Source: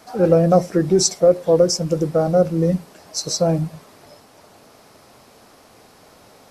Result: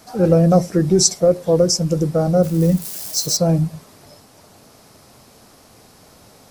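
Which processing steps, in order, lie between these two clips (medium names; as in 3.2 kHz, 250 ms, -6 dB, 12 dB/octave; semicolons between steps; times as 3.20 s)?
2.43–3.37 s: zero-crossing glitches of -25.5 dBFS; tone controls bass +7 dB, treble +6 dB; trim -1.5 dB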